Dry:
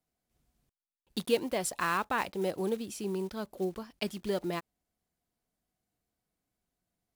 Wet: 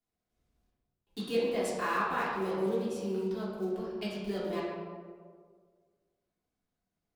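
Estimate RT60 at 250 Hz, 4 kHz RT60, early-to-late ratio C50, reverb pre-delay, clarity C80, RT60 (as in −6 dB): 1.8 s, 0.90 s, −0.5 dB, 3 ms, 2.0 dB, 1.8 s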